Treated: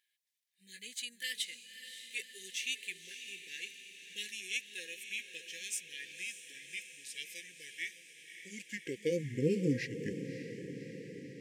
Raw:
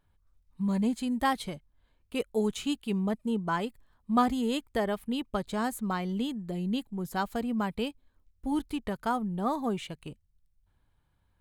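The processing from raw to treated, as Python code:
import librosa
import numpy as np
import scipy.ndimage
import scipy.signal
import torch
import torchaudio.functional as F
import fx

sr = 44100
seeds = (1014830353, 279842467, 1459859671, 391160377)

p1 = fx.pitch_glide(x, sr, semitones=-8.0, runs='starting unshifted')
p2 = fx.filter_sweep_highpass(p1, sr, from_hz=2100.0, to_hz=210.0, start_s=8.01, end_s=9.41, q=0.82)
p3 = fx.brickwall_bandstop(p2, sr, low_hz=530.0, high_hz=1600.0)
p4 = p3 + fx.echo_diffused(p3, sr, ms=574, feedback_pct=67, wet_db=-10.0, dry=0)
y = p4 * librosa.db_to_amplitude(4.0)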